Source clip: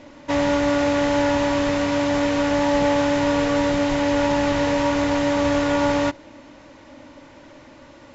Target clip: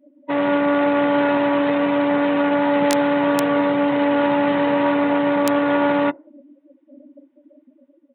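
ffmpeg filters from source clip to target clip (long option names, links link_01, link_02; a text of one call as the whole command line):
ffmpeg -i in.wav -af "afftdn=noise_reduction=36:noise_floor=-31,aresample=8000,aeval=exprs='clip(val(0),-1,0.075)':channel_layout=same,aresample=44100,dynaudnorm=framelen=140:gausssize=5:maxgain=5.5dB,aeval=exprs='(mod(1.68*val(0)+1,2)-1)/1.68':channel_layout=same,highpass=frequency=160:width=0.5412,highpass=frequency=160:width=1.3066,volume=-1dB" out.wav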